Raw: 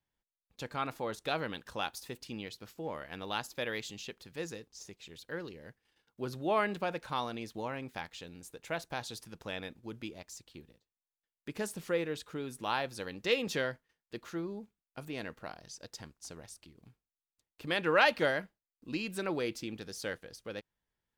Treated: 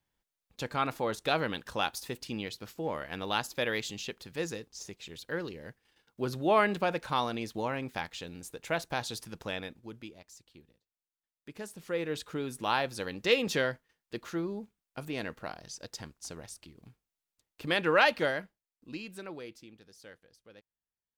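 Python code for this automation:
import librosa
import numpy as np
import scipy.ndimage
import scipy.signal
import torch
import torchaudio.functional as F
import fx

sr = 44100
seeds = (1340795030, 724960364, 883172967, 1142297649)

y = fx.gain(x, sr, db=fx.line((9.4, 5.0), (10.21, -5.5), (11.77, -5.5), (12.17, 4.0), (17.66, 4.0), (18.95, -4.5), (19.78, -13.5)))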